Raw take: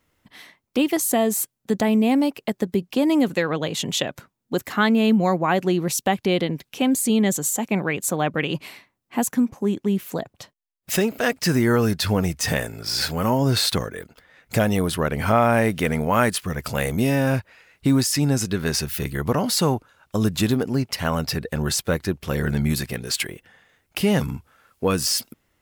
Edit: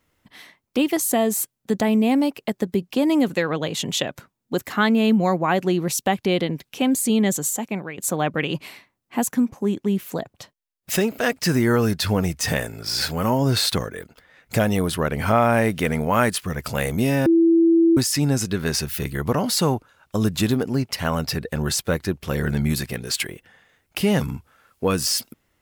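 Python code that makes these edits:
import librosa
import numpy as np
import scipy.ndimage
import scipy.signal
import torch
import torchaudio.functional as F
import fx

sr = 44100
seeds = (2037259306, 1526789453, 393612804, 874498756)

y = fx.edit(x, sr, fx.fade_out_to(start_s=7.44, length_s=0.54, floor_db=-13.0),
    fx.bleep(start_s=17.26, length_s=0.71, hz=332.0, db=-12.0), tone=tone)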